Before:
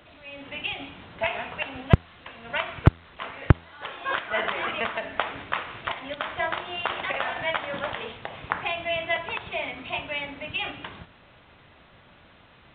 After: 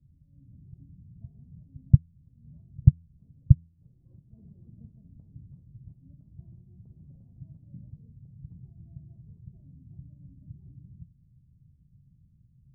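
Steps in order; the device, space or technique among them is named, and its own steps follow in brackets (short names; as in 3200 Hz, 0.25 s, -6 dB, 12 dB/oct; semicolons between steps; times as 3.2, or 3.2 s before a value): the neighbour's flat through the wall (LPF 160 Hz 24 dB/oct; bell 140 Hz +6.5 dB 0.6 oct); gain -1 dB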